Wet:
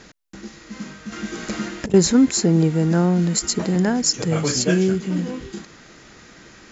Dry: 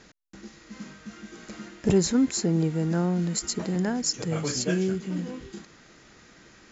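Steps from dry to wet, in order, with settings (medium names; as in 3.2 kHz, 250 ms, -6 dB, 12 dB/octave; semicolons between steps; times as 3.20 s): 1.12–1.94 s: compressor with a negative ratio -29 dBFS, ratio -0.5; trim +7.5 dB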